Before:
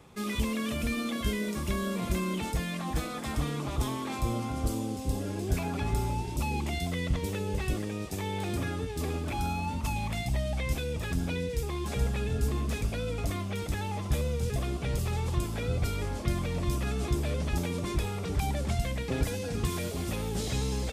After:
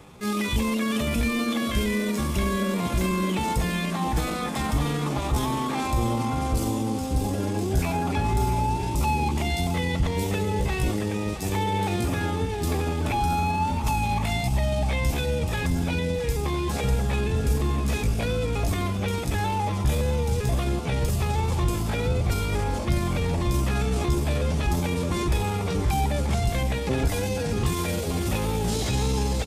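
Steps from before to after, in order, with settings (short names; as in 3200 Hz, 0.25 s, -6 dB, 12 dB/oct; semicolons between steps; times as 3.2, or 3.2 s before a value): dynamic EQ 860 Hz, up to +5 dB, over -51 dBFS, Q 4.1; in parallel at +2 dB: limiter -24.5 dBFS, peak gain reduction 9 dB; on the sum: tempo 0.71×; feedback echo 0.667 s, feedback 52%, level -13 dB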